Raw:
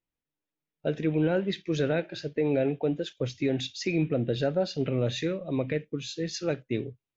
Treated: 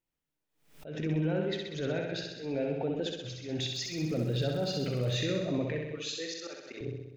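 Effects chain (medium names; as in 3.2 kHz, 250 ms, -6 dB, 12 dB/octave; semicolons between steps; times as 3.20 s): 5.86–6.81 s: high-pass 620 Hz 12 dB/octave; peak limiter -25 dBFS, peak gain reduction 9.5 dB; slow attack 152 ms; 3.60–5.15 s: crackle 110 per s -41 dBFS; flutter echo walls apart 11 m, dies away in 1 s; swell ahead of each attack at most 110 dB/s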